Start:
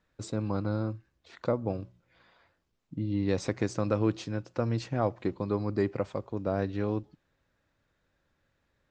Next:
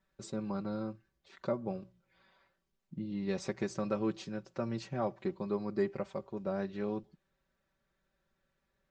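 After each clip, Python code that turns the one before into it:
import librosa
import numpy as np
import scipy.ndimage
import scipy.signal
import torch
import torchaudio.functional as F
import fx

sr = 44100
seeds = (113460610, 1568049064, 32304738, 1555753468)

y = x + 0.78 * np.pad(x, (int(5.2 * sr / 1000.0), 0))[:len(x)]
y = F.gain(torch.from_numpy(y), -7.0).numpy()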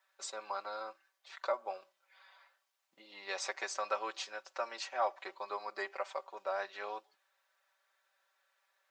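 y = scipy.signal.sosfilt(scipy.signal.butter(4, 700.0, 'highpass', fs=sr, output='sos'), x)
y = F.gain(torch.from_numpy(y), 7.0).numpy()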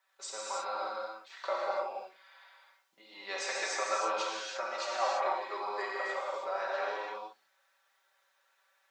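y = fx.hum_notches(x, sr, base_hz=60, count=4)
y = fx.rev_gated(y, sr, seeds[0], gate_ms=360, shape='flat', drr_db=-5.0)
y = F.gain(torch.from_numpy(y), -1.0).numpy()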